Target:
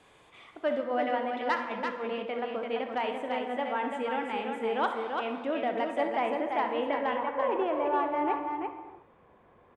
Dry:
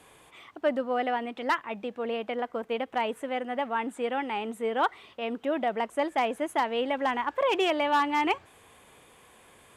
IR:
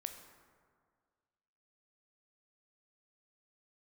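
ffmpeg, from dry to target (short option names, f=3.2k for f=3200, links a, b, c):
-filter_complex "[0:a]asetnsamples=n=441:p=0,asendcmd='6.01 lowpass f 2600;7.15 lowpass f 1200',lowpass=6.1k,aecho=1:1:64|339:0.251|0.596[a];[1:a]atrim=start_sample=2205,afade=t=out:st=0.41:d=0.01,atrim=end_sample=18522[b];[a][b]afir=irnorm=-1:irlink=0"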